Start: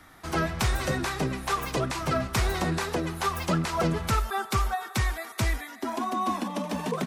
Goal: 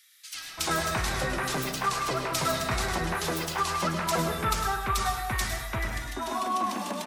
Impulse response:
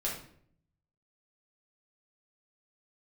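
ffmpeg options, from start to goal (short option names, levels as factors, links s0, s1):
-filter_complex "[0:a]tiltshelf=f=640:g=-5,acrossover=split=2500[s0][s1];[s0]adelay=340[s2];[s2][s1]amix=inputs=2:normalize=0,asplit=2[s3][s4];[1:a]atrim=start_sample=2205,adelay=103[s5];[s4][s5]afir=irnorm=-1:irlink=0,volume=0.376[s6];[s3][s6]amix=inputs=2:normalize=0,volume=0.794"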